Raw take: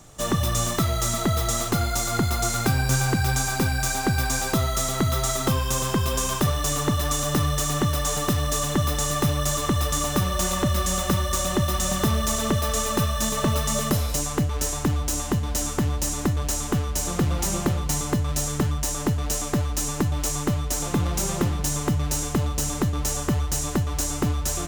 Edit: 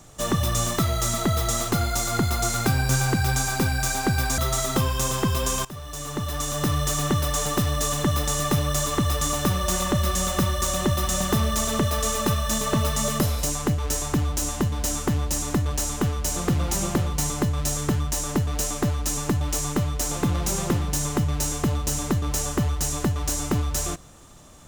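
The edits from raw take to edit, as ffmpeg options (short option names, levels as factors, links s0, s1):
-filter_complex "[0:a]asplit=3[s0][s1][s2];[s0]atrim=end=4.382[s3];[s1]atrim=start=5.088:end=6.36,asetpts=PTS-STARTPTS,afade=t=out:st=1.268:d=0.004:c=hsin:silence=0.1[s4];[s2]atrim=start=6.36,asetpts=PTS-STARTPTS,afade=t=in:d=1.2:silence=0.1[s5];[s4][s5]concat=n=2:v=0:a=1[s6];[s3][s6]acrossfade=d=0.004:c1=hsin:c2=hsin"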